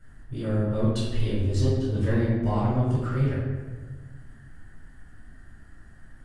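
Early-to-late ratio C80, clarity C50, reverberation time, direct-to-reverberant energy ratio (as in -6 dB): 2.0 dB, -0.5 dB, 1.4 s, -8.0 dB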